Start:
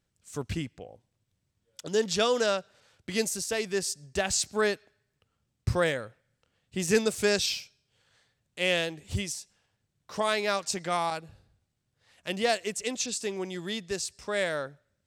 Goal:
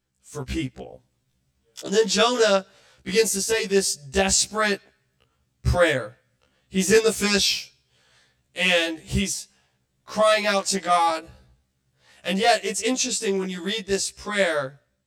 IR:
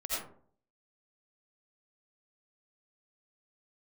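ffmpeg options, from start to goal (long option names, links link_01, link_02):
-af "dynaudnorm=framelen=200:gausssize=5:maxgain=6.5dB,afftfilt=real='re*1.73*eq(mod(b,3),0)':imag='im*1.73*eq(mod(b,3),0)':win_size=2048:overlap=0.75,volume=3.5dB"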